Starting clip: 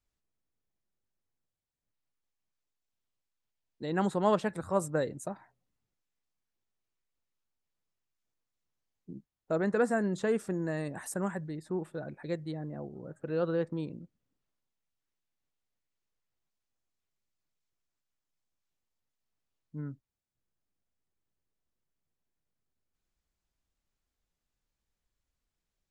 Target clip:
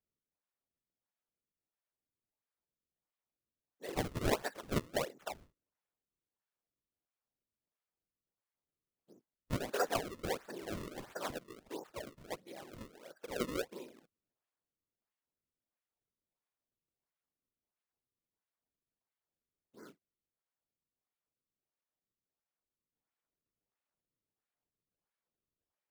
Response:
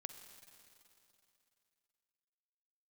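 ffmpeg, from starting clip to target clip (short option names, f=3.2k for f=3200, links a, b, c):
-af "afftfilt=real='hypot(re,im)*cos(2*PI*random(0))':imag='hypot(re,im)*sin(2*PI*random(1))':win_size=512:overlap=0.75,highpass=650,lowpass=3.3k,acrusher=samples=32:mix=1:aa=0.000001:lfo=1:lforange=51.2:lforate=1.5,volume=5dB"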